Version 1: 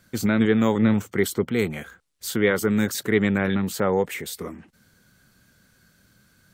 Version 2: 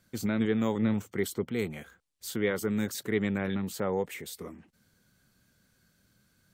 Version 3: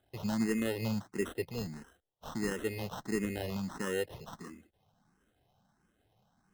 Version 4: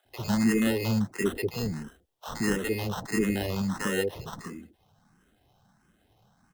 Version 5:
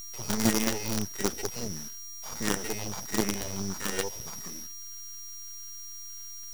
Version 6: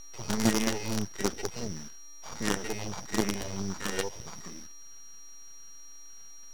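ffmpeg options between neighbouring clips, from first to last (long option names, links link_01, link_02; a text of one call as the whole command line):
ffmpeg -i in.wav -af "equalizer=frequency=1500:width_type=o:width=0.77:gain=-3,volume=-8dB" out.wav
ffmpeg -i in.wav -filter_complex "[0:a]acrusher=samples=19:mix=1:aa=0.000001,asplit=2[link_01][link_02];[link_02]afreqshift=1.5[link_03];[link_01][link_03]amix=inputs=2:normalize=1,volume=-2dB" out.wav
ffmpeg -i in.wav -filter_complex "[0:a]acrossover=split=540[link_01][link_02];[link_01]adelay=50[link_03];[link_03][link_02]amix=inputs=2:normalize=0,volume=8dB" out.wav
ffmpeg -i in.wav -af "aeval=exprs='val(0)+0.0224*sin(2*PI*5700*n/s)':channel_layout=same,acrusher=bits=4:dc=4:mix=0:aa=0.000001,bandreject=frequency=2700:width=27,volume=-1.5dB" out.wav
ffmpeg -i in.wav -af "adynamicsmooth=sensitivity=7.5:basefreq=3900" out.wav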